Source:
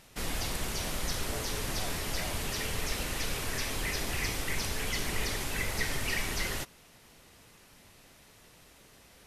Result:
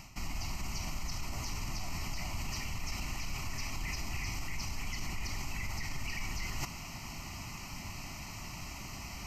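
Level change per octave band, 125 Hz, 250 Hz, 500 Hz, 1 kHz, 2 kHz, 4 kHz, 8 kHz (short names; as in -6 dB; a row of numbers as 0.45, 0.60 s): -1.5, -4.5, -13.0, -4.0, -6.5, -6.5, -6.0 dB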